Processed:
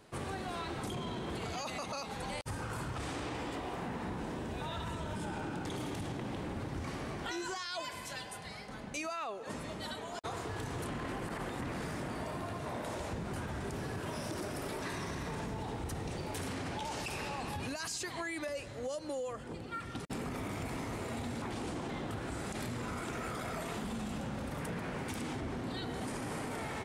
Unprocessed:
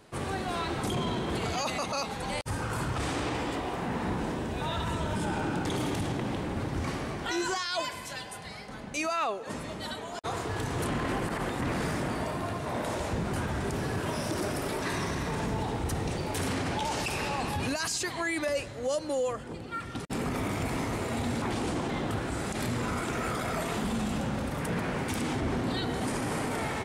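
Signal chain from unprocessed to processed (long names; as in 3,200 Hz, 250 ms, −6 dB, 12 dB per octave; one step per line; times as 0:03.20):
downward compressor, threshold −32 dBFS, peak gain reduction 7 dB
level −3.5 dB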